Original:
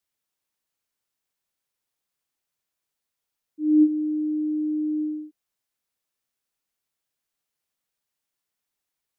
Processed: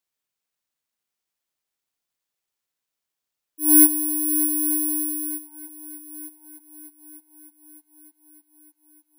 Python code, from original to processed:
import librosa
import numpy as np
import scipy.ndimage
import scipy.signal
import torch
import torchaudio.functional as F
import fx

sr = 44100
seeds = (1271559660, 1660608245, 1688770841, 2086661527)

p1 = scipy.signal.sosfilt(scipy.signal.butter(2, 170.0, 'highpass', fs=sr, output='sos'), x)
p2 = np.clip(10.0 ** (29.0 / 20.0) * p1, -1.0, 1.0) / 10.0 ** (29.0 / 20.0)
p3 = p1 + (p2 * 10.0 ** (-9.0 / 20.0))
p4 = fx.cheby_harmonics(p3, sr, harmonics=(7,), levels_db=(-22,), full_scale_db=-10.0)
p5 = fx.echo_heads(p4, sr, ms=303, heads='second and third', feedback_pct=62, wet_db=-14.5)
p6 = (np.kron(p5[::4], np.eye(4)[0]) * 4)[:len(p5)]
y = p6 * 10.0 ** (-2.5 / 20.0)